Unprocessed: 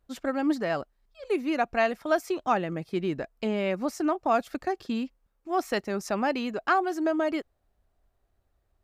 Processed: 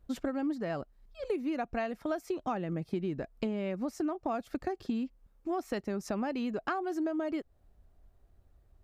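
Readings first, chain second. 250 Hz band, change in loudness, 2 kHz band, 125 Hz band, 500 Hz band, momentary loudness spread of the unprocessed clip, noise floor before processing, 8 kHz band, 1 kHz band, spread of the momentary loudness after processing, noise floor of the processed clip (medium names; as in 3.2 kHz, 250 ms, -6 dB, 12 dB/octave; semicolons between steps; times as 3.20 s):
-4.0 dB, -6.5 dB, -11.0 dB, -2.0 dB, -7.0 dB, 7 LU, -74 dBFS, -8.0 dB, -9.5 dB, 4 LU, -66 dBFS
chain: bass shelf 410 Hz +10 dB; compression 6:1, threshold -31 dBFS, peak gain reduction 15 dB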